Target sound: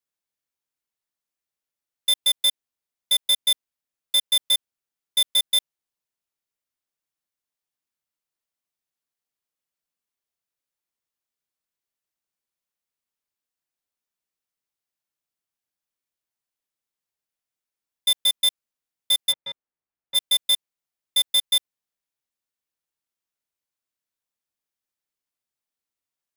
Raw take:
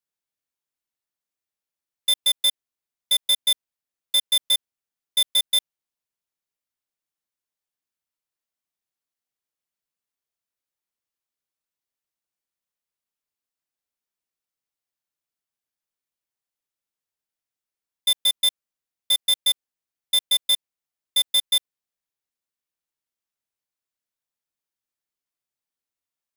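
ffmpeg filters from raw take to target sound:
-filter_complex "[0:a]asplit=3[a][b][c];[a]afade=t=out:st=19.31:d=0.02[d];[b]lowpass=1.7k,afade=t=in:st=19.31:d=0.02,afade=t=out:st=20.14:d=0.02[e];[c]afade=t=in:st=20.14:d=0.02[f];[d][e][f]amix=inputs=3:normalize=0"

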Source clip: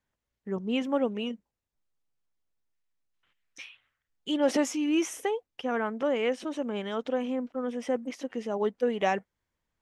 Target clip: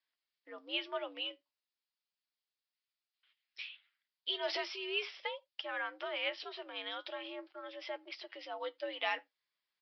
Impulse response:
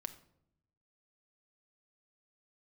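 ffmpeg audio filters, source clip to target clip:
-filter_complex "[0:a]aderivative,flanger=delay=4.6:depth=6:regen=64:speed=0.37:shape=triangular,afreqshift=82,asplit=2[a][b];[1:a]atrim=start_sample=2205,atrim=end_sample=3969[c];[b][c]afir=irnorm=-1:irlink=0,volume=-10.5dB[d];[a][d]amix=inputs=2:normalize=0,aresample=11025,aresample=44100,volume=11.5dB"

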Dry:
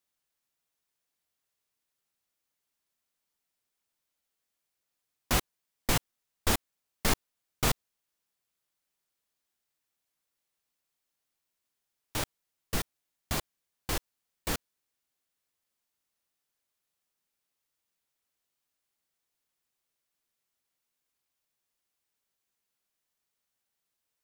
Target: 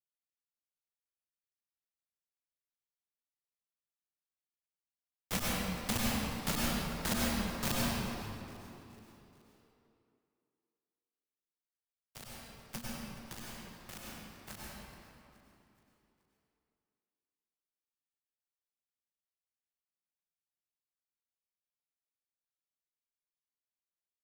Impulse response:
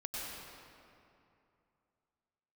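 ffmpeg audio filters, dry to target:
-filter_complex "[0:a]aeval=exprs='0.299*(cos(1*acos(clip(val(0)/0.299,-1,1)))-cos(1*PI/2))+0.0473*(cos(7*acos(clip(val(0)/0.299,-1,1)))-cos(7*PI/2))':c=same,afreqshift=-240,asplit=5[a][b][c][d][e];[b]adelay=425,afreqshift=59,volume=-19dB[f];[c]adelay=850,afreqshift=118,volume=-25dB[g];[d]adelay=1275,afreqshift=177,volume=-31dB[h];[e]adelay=1700,afreqshift=236,volume=-37.1dB[i];[a][f][g][h][i]amix=inputs=5:normalize=0[j];[1:a]atrim=start_sample=2205[k];[j][k]afir=irnorm=-1:irlink=0,volume=-1.5dB"

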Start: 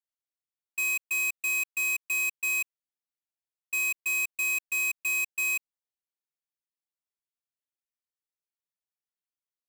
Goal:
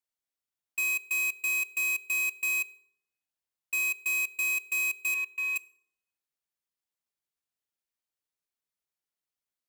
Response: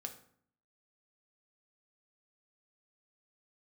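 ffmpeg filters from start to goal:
-filter_complex "[0:a]asettb=1/sr,asplit=3[a][b][c];[a]atrim=end=5.144[d];[b]atrim=start=5.14:end=5.56,asetpts=PTS-STARTPTS,afade=t=in:d=0.004:c=qsin,afade=t=out:st=0.416:d=0.004:c=qsin,acrossover=split=370 3100:gain=0.224 1 0.2[e][f][g];[e][f][g]amix=inputs=3:normalize=0[h];[c]atrim=start=5.556[i];[d][h]acrossfade=d=0.004:c1=hsin:c2=qsin[j];[j][i]acrossfade=d=0.004:c1=qsin:c2=hsin,asplit=2[k][l];[1:a]atrim=start_sample=2205,asetrate=37485,aresample=44100[m];[l][m]afir=irnorm=-1:irlink=0,volume=-9dB[n];[k][n]amix=inputs=2:normalize=0,alimiter=level_in=2.5dB:limit=-24dB:level=0:latency=1:release=72,volume=-2.5dB"

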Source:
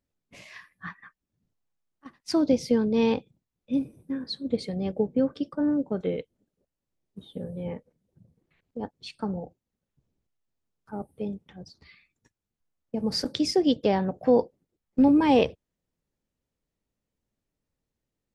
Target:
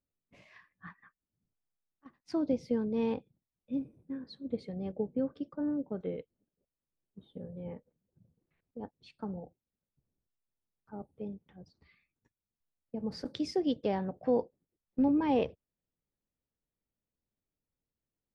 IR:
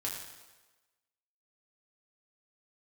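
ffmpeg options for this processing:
-af "asetnsamples=n=441:p=0,asendcmd='13.25 lowpass f 3200;14.37 lowpass f 2000',lowpass=f=1.6k:p=1,volume=-8dB"

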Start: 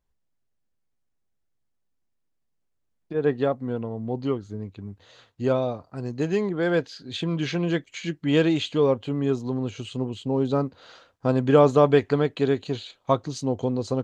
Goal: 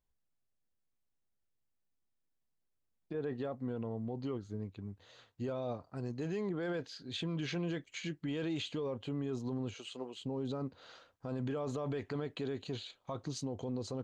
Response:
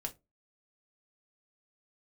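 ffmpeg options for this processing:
-filter_complex "[0:a]asettb=1/sr,asplit=3[a][b][c];[a]atrim=end=9.744[d];[b]atrim=start=9.74:end=10.21,asetpts=PTS-STARTPTS,afade=t=in:d=0.004:c=qsin,afade=t=out:st=0.466:d=0.004:c=qsin,highpass=460[e];[c]atrim=start=10.206[f];[d][e]acrossfade=d=0.004:c1=hsin:c2=qsin[g];[g][f]acrossfade=d=0.004:c1=qsin:c2=hsin,alimiter=limit=-22.5dB:level=0:latency=1:release=27,volume=-7dB"

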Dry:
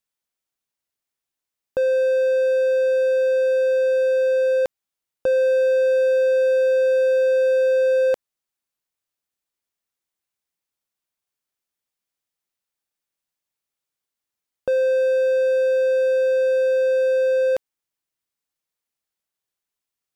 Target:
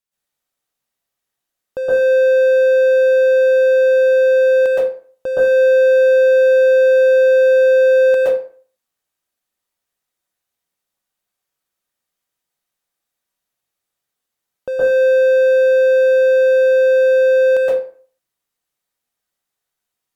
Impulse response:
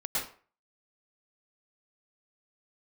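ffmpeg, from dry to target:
-filter_complex "[1:a]atrim=start_sample=2205,asetrate=38808,aresample=44100[a];[0:a][a]afir=irnorm=-1:irlink=0"

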